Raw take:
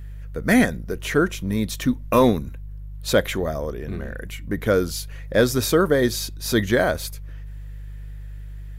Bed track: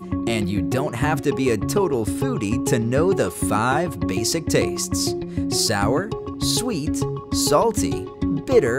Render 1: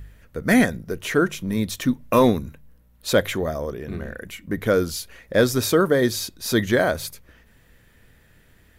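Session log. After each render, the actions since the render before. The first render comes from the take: de-hum 50 Hz, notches 3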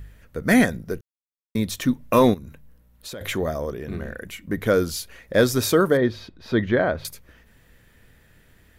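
1.01–1.55 mute; 2.34–3.21 compressor, threshold -34 dBFS; 5.97–7.05 air absorption 340 m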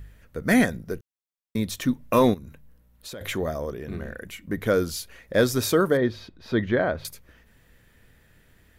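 gain -2.5 dB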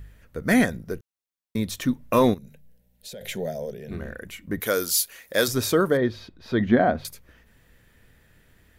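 2.38–3.91 fixed phaser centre 310 Hz, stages 6; 4.6–5.48 RIAA curve recording; 6.6–7.02 small resonant body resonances 230/720 Hz, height 11 dB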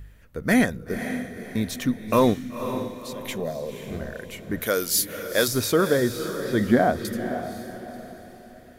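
diffused feedback echo 0.511 s, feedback 42%, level -9 dB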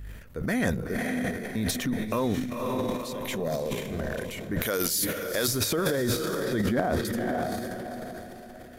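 compressor 6:1, threshold -24 dBFS, peak gain reduction 11 dB; transient shaper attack -3 dB, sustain +12 dB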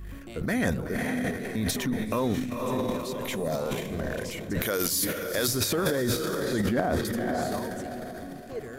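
add bed track -21 dB

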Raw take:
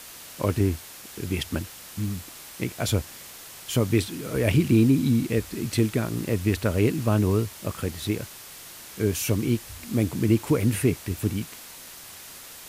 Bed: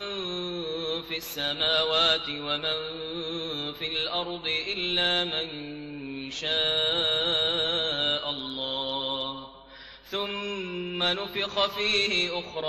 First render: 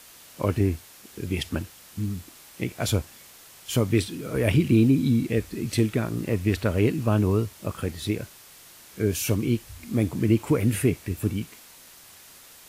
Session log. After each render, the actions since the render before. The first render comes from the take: noise print and reduce 6 dB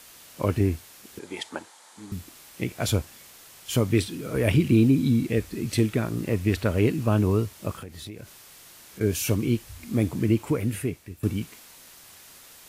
1.19–2.12 speaker cabinet 450–9500 Hz, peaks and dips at 880 Hz +10 dB, 2700 Hz -8 dB, 5300 Hz -5 dB; 7.76–9.01 compressor 4:1, threshold -37 dBFS; 10.12–11.23 fade out, to -13.5 dB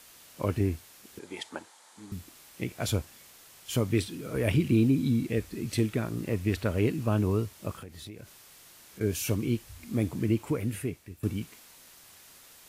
gain -4.5 dB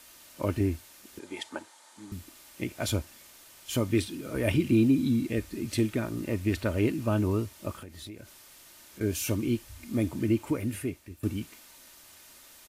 comb 3.3 ms, depth 39%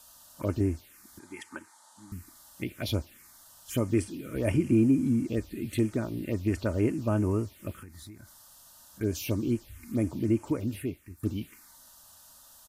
envelope phaser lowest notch 340 Hz, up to 3800 Hz, full sweep at -23.5 dBFS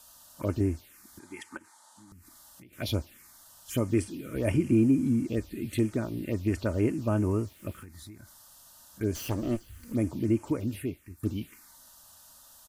1.57–2.73 compressor 12:1, threshold -49 dBFS; 7.03–7.86 sample gate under -57 dBFS; 9.15–9.93 minimum comb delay 0.65 ms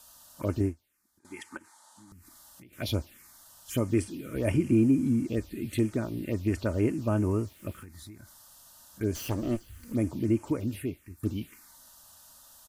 0.62–1.25 upward expander 2.5:1, over -37 dBFS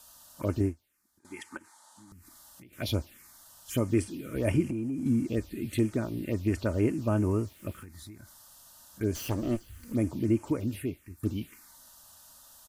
4.64–5.06 compressor 12:1, threshold -29 dBFS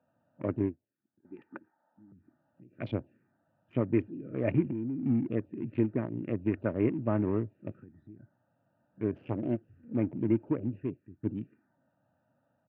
Wiener smoothing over 41 samples; elliptic band-pass 120–2400 Hz, stop band 50 dB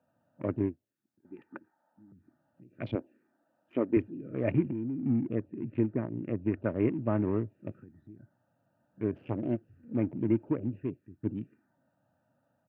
2.95–3.97 resonant low shelf 190 Hz -13.5 dB, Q 1.5; 5.01–6.64 air absorption 250 m

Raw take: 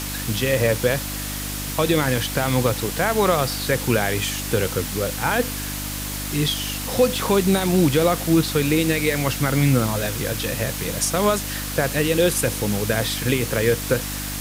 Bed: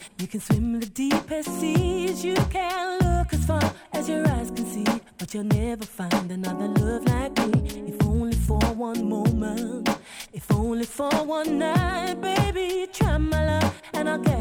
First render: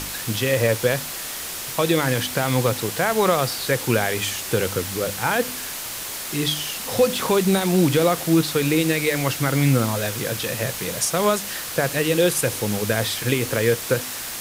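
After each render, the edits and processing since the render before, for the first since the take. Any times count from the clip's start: de-hum 50 Hz, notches 6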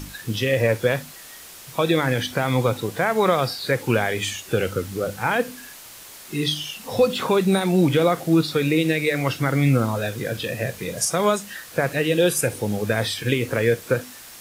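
noise print and reduce 11 dB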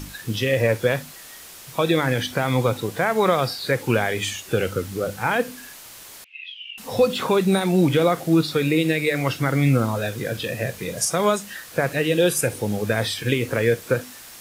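6.24–6.78 Butterworth band-pass 2600 Hz, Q 4.4; 8.62–9.15 notch 5900 Hz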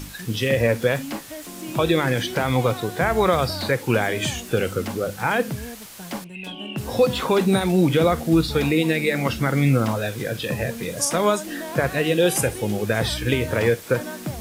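add bed -9 dB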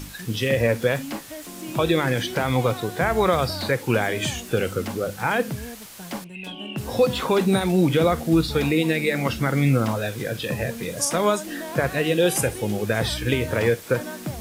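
gain -1 dB

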